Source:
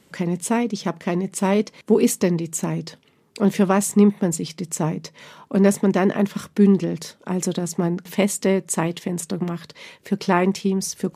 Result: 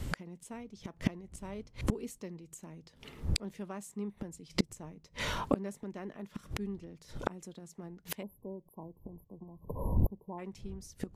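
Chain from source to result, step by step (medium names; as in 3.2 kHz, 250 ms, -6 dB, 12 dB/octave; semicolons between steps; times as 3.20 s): wind noise 99 Hz -35 dBFS; inverted gate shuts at -21 dBFS, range -32 dB; spectral selection erased 8.22–10.39 s, 1.1–11 kHz; trim +7.5 dB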